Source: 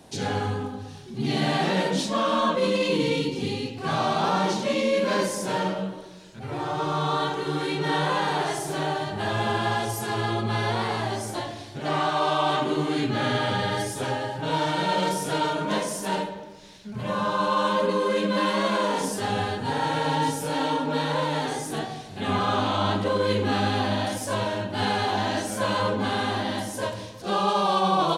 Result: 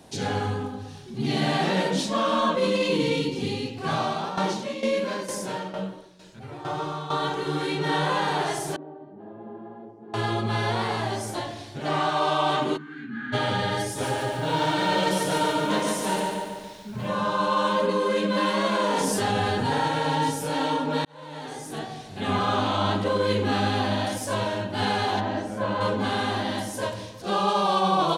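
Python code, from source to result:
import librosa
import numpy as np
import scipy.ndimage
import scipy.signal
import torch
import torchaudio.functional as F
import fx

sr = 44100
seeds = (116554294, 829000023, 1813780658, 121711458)

y = fx.tremolo_shape(x, sr, shape='saw_down', hz=2.2, depth_pct=75, at=(3.92, 7.24))
y = fx.ladder_bandpass(y, sr, hz=310.0, resonance_pct=40, at=(8.76, 10.14))
y = fx.double_bandpass(y, sr, hz=600.0, octaves=2.8, at=(12.76, 13.32), fade=0.02)
y = fx.echo_crushed(y, sr, ms=143, feedback_pct=55, bits=9, wet_db=-4, at=(13.84, 17.08))
y = fx.env_flatten(y, sr, amount_pct=70, at=(18.79, 19.88))
y = fx.lowpass(y, sr, hz=1200.0, slope=6, at=(25.19, 25.8), fade=0.02)
y = fx.edit(y, sr, fx.fade_in_span(start_s=21.05, length_s=1.1), tone=tone)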